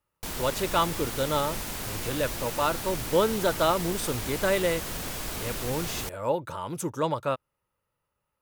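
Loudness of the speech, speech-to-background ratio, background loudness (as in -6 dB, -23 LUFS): -29.0 LUFS, 4.5 dB, -33.5 LUFS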